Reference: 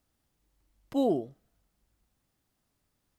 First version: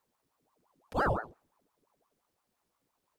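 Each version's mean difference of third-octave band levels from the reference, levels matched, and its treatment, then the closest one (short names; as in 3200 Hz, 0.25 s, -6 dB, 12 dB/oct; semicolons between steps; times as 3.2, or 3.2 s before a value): 8.5 dB: ring modulator with a swept carrier 660 Hz, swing 70%, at 5.8 Hz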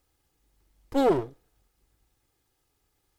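5.5 dB: minimum comb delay 2.4 ms; gain +5.5 dB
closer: second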